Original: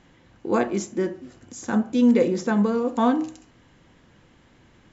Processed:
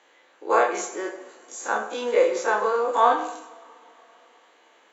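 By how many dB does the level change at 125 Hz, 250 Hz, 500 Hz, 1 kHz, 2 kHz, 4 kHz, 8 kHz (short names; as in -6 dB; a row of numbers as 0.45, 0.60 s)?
under -25 dB, -16.5 dB, +2.0 dB, +7.5 dB, +6.0 dB, +2.5 dB, n/a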